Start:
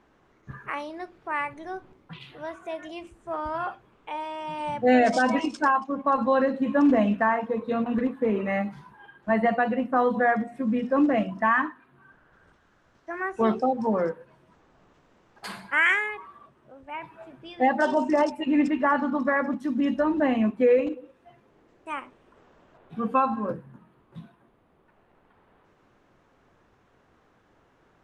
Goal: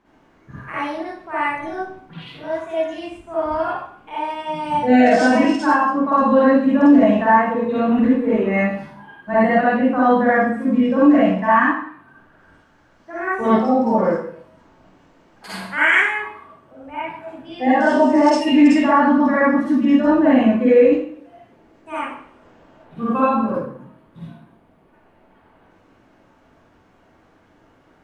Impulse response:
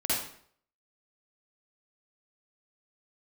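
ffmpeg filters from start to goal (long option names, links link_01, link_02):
-filter_complex "[0:a]asettb=1/sr,asplit=3[link_01][link_02][link_03];[link_01]atrim=end=18.254[link_04];[link_02]atrim=start=18.25:end=18.84,asetpts=PTS-STARTPTS,afade=type=in:duration=0.004:curve=qsin,afade=type=out:start_time=0.586:duration=0.004:curve=qsin,equalizer=frequency=6600:width_type=o:width=2.8:gain=10[link_05];[link_03]atrim=start=18.836[link_06];[link_04][link_05]acrossfade=duration=0.004:curve1=hsin:curve2=qsin[link_07];[link_07][link_06]acrossfade=duration=0.004:curve1=qsin:curve2=hsin[link_08];[1:a]atrim=start_sample=2205[link_09];[link_08][link_09]afir=irnorm=-1:irlink=0,alimiter=level_in=1.5dB:limit=-1dB:release=50:level=0:latency=1,volume=-3dB"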